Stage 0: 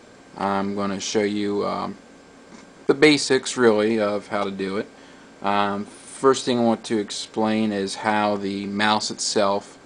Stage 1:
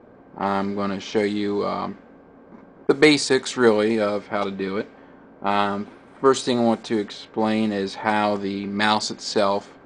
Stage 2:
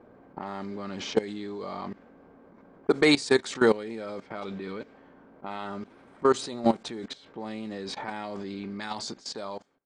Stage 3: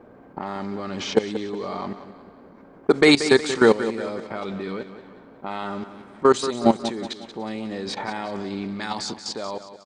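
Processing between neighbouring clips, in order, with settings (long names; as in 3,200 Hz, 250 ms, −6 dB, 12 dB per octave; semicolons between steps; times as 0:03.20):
low-pass that shuts in the quiet parts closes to 980 Hz, open at −16 dBFS
fade-out on the ending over 1.05 s; output level in coarse steps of 18 dB
repeating echo 182 ms, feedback 47%, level −12 dB; level +5.5 dB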